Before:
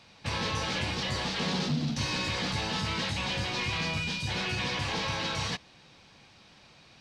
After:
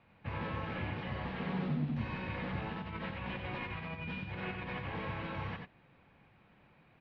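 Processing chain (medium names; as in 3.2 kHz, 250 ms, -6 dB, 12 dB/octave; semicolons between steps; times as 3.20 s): low-pass 2.4 kHz 24 dB/octave; bass shelf 360 Hz +3.5 dB; 2.72–4.87 s: compressor with a negative ratio -33 dBFS, ratio -0.5; delay 91 ms -4.5 dB; trim -8.5 dB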